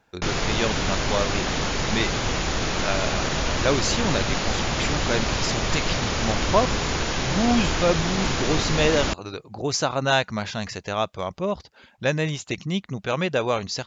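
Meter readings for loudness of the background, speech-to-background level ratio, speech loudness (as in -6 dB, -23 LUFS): -25.0 LUFS, -1.5 dB, -26.5 LUFS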